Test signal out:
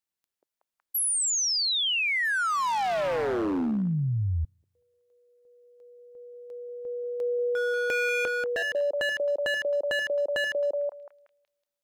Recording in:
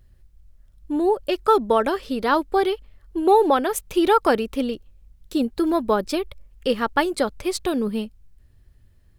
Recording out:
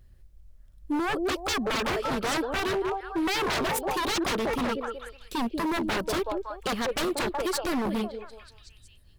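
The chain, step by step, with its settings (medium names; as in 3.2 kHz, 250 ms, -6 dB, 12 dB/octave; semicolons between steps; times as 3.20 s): repeats whose band climbs or falls 186 ms, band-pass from 450 Hz, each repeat 0.7 oct, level -6 dB; wavefolder -21.5 dBFS; trim -1 dB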